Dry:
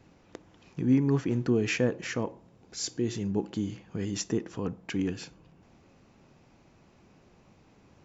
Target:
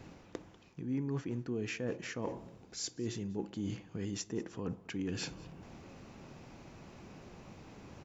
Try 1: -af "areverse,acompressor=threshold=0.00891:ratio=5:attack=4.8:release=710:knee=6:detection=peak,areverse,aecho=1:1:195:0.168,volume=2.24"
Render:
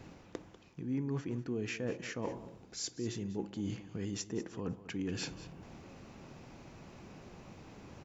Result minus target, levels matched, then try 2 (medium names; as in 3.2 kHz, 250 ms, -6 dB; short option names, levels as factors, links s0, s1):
echo-to-direct +7 dB
-af "areverse,acompressor=threshold=0.00891:ratio=5:attack=4.8:release=710:knee=6:detection=peak,areverse,aecho=1:1:195:0.075,volume=2.24"